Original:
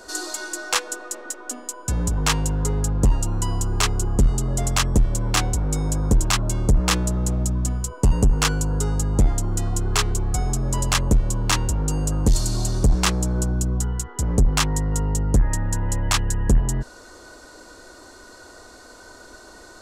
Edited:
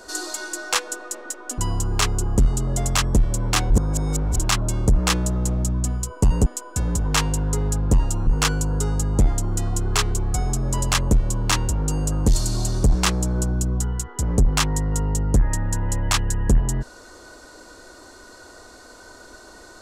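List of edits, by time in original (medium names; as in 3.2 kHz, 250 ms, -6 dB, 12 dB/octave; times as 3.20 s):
1.58–3.39 s: move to 8.27 s
5.51–6.19 s: reverse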